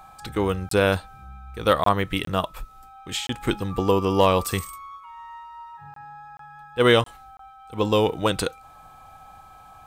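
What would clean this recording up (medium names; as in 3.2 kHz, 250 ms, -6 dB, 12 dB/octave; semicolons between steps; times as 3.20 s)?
clip repair -6 dBFS; band-stop 1.3 kHz, Q 30; interpolate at 0.69/1.84/2.25/3.27/5.94/6.37/7.04/7.37 s, 23 ms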